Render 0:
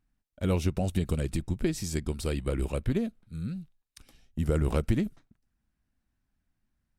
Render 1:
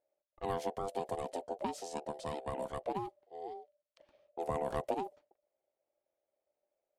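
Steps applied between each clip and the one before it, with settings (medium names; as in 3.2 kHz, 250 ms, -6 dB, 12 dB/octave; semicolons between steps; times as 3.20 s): ring modulator 590 Hz; level-controlled noise filter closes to 2.8 kHz, open at -27 dBFS; trim -7 dB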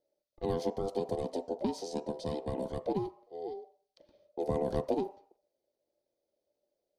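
reverberation RT60 0.55 s, pre-delay 3 ms, DRR 11.5 dB; trim -4.5 dB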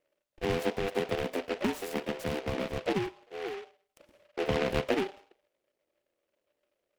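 delay time shaken by noise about 1.8 kHz, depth 0.12 ms; trim +2.5 dB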